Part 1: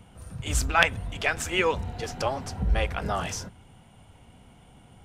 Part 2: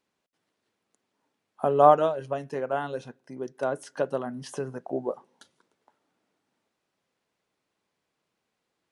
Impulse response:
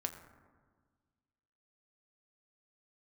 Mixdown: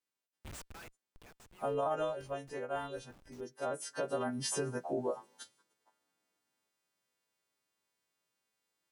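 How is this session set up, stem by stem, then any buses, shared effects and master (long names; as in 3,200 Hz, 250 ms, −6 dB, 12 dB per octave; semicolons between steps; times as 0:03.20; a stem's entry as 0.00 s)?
−11.5 dB, 0.00 s, no send, spectral tilt +3 dB per octave; comparator with hysteresis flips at −23.5 dBFS; automatic ducking −20 dB, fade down 1.50 s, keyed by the second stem
0:01.29 −18 dB → 0:01.66 −9 dB → 0:03.62 −9 dB → 0:04.28 −0.5 dB → 0:05.37 −0.5 dB → 0:05.62 −9.5 dB, 0.00 s, no send, every partial snapped to a pitch grid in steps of 2 semitones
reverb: not used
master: brickwall limiter −25 dBFS, peak gain reduction 11.5 dB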